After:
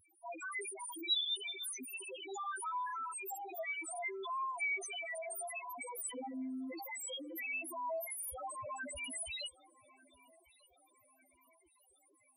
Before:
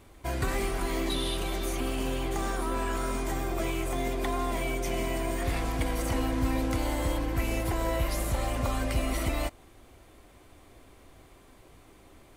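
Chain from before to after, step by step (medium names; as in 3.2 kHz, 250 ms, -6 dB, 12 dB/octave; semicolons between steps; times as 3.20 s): tilt EQ +4.5 dB/octave; wow and flutter 23 cents; loudest bins only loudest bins 1; filtered feedback delay 1192 ms, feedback 51%, low-pass 2 kHz, level -22 dB; trim +4 dB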